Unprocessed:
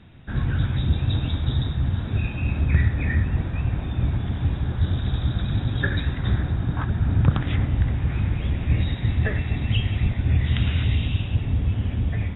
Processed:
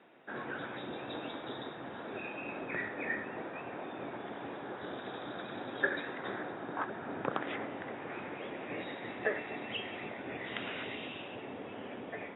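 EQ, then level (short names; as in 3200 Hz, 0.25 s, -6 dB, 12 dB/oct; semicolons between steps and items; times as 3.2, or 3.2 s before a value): ladder high-pass 340 Hz, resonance 25%; air absorption 460 m; +5.5 dB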